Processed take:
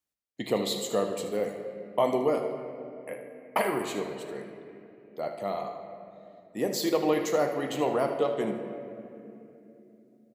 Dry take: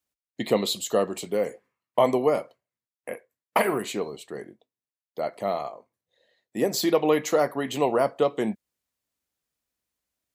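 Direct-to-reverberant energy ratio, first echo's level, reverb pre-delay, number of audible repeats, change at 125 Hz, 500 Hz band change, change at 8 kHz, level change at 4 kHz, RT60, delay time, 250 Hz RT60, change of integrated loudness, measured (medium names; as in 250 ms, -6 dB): 4.5 dB, -12.0 dB, 7 ms, 1, -3.0 dB, -3.5 dB, -4.5 dB, -4.0 dB, 3.0 s, 77 ms, 4.4 s, -4.5 dB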